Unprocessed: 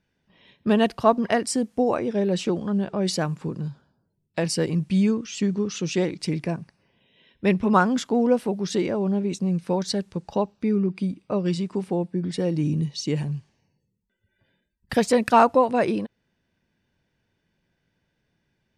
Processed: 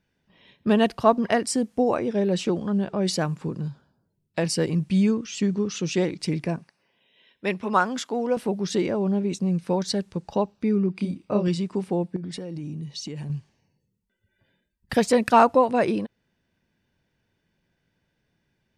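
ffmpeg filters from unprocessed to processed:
-filter_complex "[0:a]asettb=1/sr,asplit=3[s0][s1][s2];[s0]atrim=end=6.584[s3];[s1]atrim=start=6.58:end=8.37,asetpts=PTS-STARTPTS,afade=t=in:d=0.004:c=qsin,afade=t=out:st=1.786:d=0.004:c=qsin,highpass=f=560:p=1[s4];[s2]atrim=start=8.366[s5];[s3][s4]acrossfade=d=0.004:c1=hsin:c2=qsin[s6];[s6][s5]acrossfade=d=0.004:c1=qsin:c2=hsin,asettb=1/sr,asplit=3[s7][s8][s9];[s7]atrim=end=10.964[s10];[s8]atrim=start=10.96:end=11.48,asetpts=PTS-STARTPTS,afade=t=in:d=0.004:c=qsin,afade=t=out:st=0.516:d=0.004:c=qsin,asplit=2[s11][s12];[s12]adelay=29,volume=0.631[s13];[s11][s13]amix=inputs=2:normalize=0,atrim=end_sample=22932[s14];[s9]atrim=start=11.476[s15];[s10][s14]acrossfade=d=0.004:c1=hsin:c2=qsin[s16];[s16][s15]acrossfade=d=0.004:c1=qsin:c2=hsin,asettb=1/sr,asplit=3[s17][s18][s19];[s17]atrim=end=12.164[s20];[s18]atrim=start=12.16:end=13.3,asetpts=PTS-STARTPTS,afade=t=in:d=0.004:c=qsin,afade=t=out:st=1.136:d=0.004:c=qsin,acompressor=threshold=0.0316:ratio=12:attack=3.2:release=140:knee=1:detection=peak[s21];[s19]atrim=start=13.296[s22];[s20][s21]acrossfade=d=0.004:c1=hsin:c2=qsin[s23];[s23][s22]acrossfade=d=0.004:c1=qsin:c2=hsin"

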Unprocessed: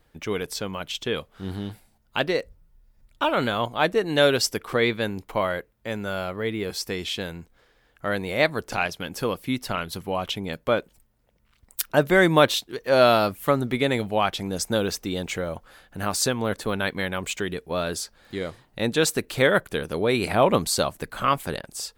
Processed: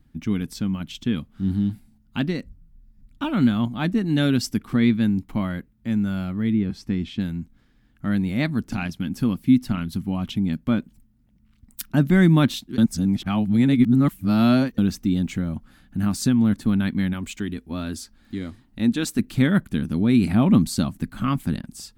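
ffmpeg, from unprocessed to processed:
-filter_complex "[0:a]asettb=1/sr,asplit=3[s0][s1][s2];[s0]atrim=end=6.534[s3];[s1]atrim=start=6.53:end=7.2,asetpts=PTS-STARTPTS,afade=t=in:d=0.004:c=qsin,afade=t=out:st=0.666:d=0.004:c=qsin,aemphasis=mode=reproduction:type=75fm[s4];[s2]atrim=start=7.196[s5];[s3][s4]acrossfade=d=0.004:c1=hsin:c2=qsin[s6];[s6][s5]acrossfade=d=0.004:c1=qsin:c2=hsin,asettb=1/sr,asplit=3[s7][s8][s9];[s7]atrim=end=17.134[s10];[s8]atrim=start=17.13:end=19.19,asetpts=PTS-STARTPTS,afade=t=in:d=0.004:c=qsin,afade=t=out:st=2.056:d=0.004:c=qsin,equalizer=f=150:t=o:w=0.77:g=-12[s11];[s9]atrim=start=19.186[s12];[s10][s11]acrossfade=d=0.004:c1=hsin:c2=qsin[s13];[s13][s12]acrossfade=d=0.004:c1=qsin:c2=hsin,asplit=3[s14][s15][s16];[s14]atrim=end=12.782[s17];[s15]atrim=start=12.778:end=14.782,asetpts=PTS-STARTPTS,areverse[s18];[s16]atrim=start=14.778[s19];[s17][s18]acrossfade=d=0.004:c1=hsin:c2=hsin[s20];[s20][s19]acrossfade=d=0.004:c1=hsin:c2=hsin,lowshelf=f=340:t=q:w=3:g=12,bandreject=f=1000:w=23,volume=0.501"

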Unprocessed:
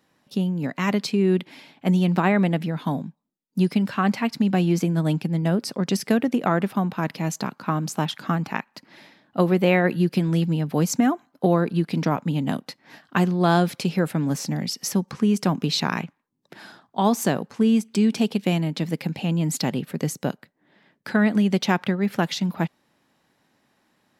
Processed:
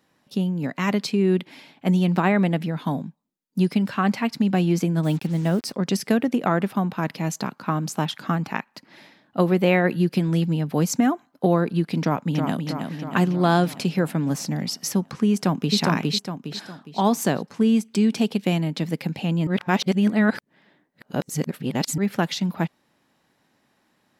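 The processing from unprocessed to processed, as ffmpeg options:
-filter_complex "[0:a]asettb=1/sr,asplit=3[s0][s1][s2];[s0]atrim=end=5.034[s3];[s1]atrim=start=5.03:end=5.73,asetpts=PTS-STARTPTS,afade=t=in:d=0.004:c=qsin,afade=t=out:st=0.696:d=0.004:c=qsin,acrusher=bits=6:mix=0:aa=0.5[s4];[s2]atrim=start=5.726[s5];[s3][s4]acrossfade=d=0.004:c1=hsin:c2=qsin[s6];[s6][s5]acrossfade=d=0.004:c1=qsin:c2=hsin,asplit=2[s7][s8];[s8]afade=t=in:st=12.02:d=0.01,afade=t=out:st=12.64:d=0.01,aecho=0:1:320|640|960|1280|1600|1920|2240|2560|2880|3200:0.530884|0.345075|0.224299|0.145794|0.0947662|0.061598|0.0400387|0.0260252|0.0169164|0.0109956[s9];[s7][s9]amix=inputs=2:normalize=0,asplit=2[s10][s11];[s11]afade=t=in:st=15.31:d=0.01,afade=t=out:st=15.77:d=0.01,aecho=0:1:410|820|1230|1640|2050:1|0.35|0.1225|0.042875|0.0150062[s12];[s10][s12]amix=inputs=2:normalize=0,asplit=3[s13][s14][s15];[s13]atrim=end=19.472[s16];[s14]atrim=start=19.468:end=21.982,asetpts=PTS-STARTPTS,areverse[s17];[s15]atrim=start=21.978[s18];[s16][s17]acrossfade=d=0.004:c1=hsin:c2=hsin[s19];[s19][s18]acrossfade=d=0.004:c1=hsin:c2=hsin"

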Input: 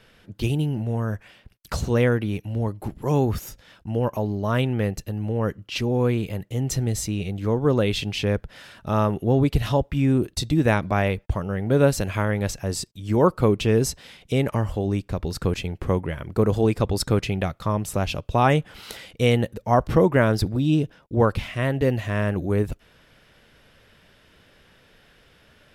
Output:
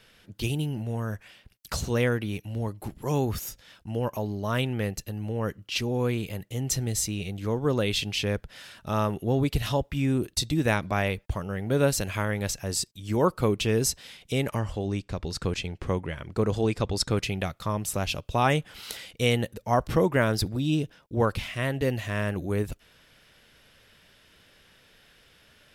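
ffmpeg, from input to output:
-filter_complex "[0:a]asettb=1/sr,asplit=3[s0][s1][s2];[s0]atrim=end=14.594[s3];[s1]atrim=start=14.59:end=17.17,asetpts=PTS-STARTPTS,afade=t=in:d=0.004:c=qsin,afade=t=out:st=2.576:d=0.004:c=qsin,lowpass=7800[s4];[s2]atrim=start=17.166[s5];[s3][s4]acrossfade=d=0.004:c1=hsin:c2=qsin[s6];[s6][s5]acrossfade=d=0.004:c1=qsin:c2=hsin,highshelf=f=2200:g=8.5,volume=0.531"

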